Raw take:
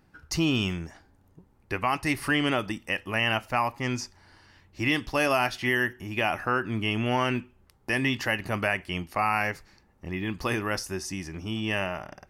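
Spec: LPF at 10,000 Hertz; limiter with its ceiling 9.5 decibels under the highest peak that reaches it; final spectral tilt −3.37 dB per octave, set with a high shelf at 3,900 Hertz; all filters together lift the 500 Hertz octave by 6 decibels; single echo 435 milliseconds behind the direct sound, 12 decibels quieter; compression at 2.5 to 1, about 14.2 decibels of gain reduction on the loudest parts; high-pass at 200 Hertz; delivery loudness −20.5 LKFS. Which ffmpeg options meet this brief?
ffmpeg -i in.wav -af "highpass=200,lowpass=10000,equalizer=frequency=500:width_type=o:gain=8,highshelf=frequency=3900:gain=5.5,acompressor=threshold=-39dB:ratio=2.5,alimiter=level_in=5dB:limit=-24dB:level=0:latency=1,volume=-5dB,aecho=1:1:435:0.251,volume=21dB" out.wav

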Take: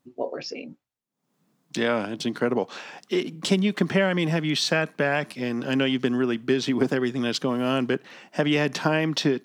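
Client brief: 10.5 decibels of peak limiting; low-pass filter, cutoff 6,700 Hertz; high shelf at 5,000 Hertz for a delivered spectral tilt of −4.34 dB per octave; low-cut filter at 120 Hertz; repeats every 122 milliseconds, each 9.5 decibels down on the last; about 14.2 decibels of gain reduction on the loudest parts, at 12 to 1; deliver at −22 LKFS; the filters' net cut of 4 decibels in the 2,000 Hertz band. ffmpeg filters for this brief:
ffmpeg -i in.wav -af "highpass=120,lowpass=6700,equalizer=frequency=2000:width_type=o:gain=-4.5,highshelf=frequency=5000:gain=-4.5,acompressor=threshold=-32dB:ratio=12,alimiter=level_in=5.5dB:limit=-24dB:level=0:latency=1,volume=-5.5dB,aecho=1:1:122|244|366|488:0.335|0.111|0.0365|0.012,volume=16.5dB" out.wav

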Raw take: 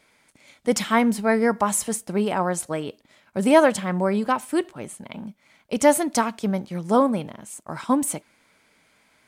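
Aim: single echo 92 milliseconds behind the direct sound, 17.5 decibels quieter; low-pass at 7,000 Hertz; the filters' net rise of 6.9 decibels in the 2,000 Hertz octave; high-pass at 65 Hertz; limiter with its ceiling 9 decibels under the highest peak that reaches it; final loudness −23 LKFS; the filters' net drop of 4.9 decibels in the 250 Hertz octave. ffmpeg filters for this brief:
ffmpeg -i in.wav -af "highpass=65,lowpass=7000,equalizer=frequency=250:width_type=o:gain=-6,equalizer=frequency=2000:width_type=o:gain=8.5,alimiter=limit=-12dB:level=0:latency=1,aecho=1:1:92:0.133,volume=2.5dB" out.wav

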